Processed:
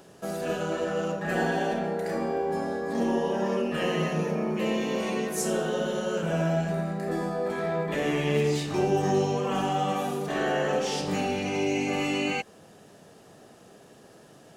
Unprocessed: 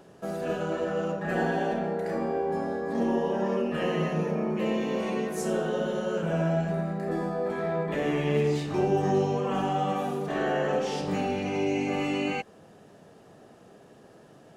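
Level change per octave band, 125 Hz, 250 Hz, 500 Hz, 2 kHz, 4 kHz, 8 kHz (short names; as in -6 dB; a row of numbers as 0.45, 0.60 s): 0.0, 0.0, 0.0, +2.5, +5.0, +7.5 dB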